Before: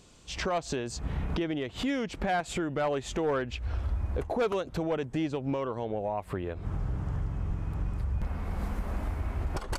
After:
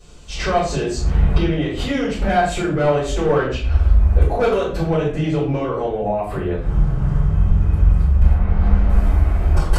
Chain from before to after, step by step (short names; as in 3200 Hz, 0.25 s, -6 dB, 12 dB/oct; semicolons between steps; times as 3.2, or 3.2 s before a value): 8.34–8.88 LPF 2600 Hz -> 4800 Hz 12 dB/oct; shoebox room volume 65 m³, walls mixed, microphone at 3.6 m; gain -4 dB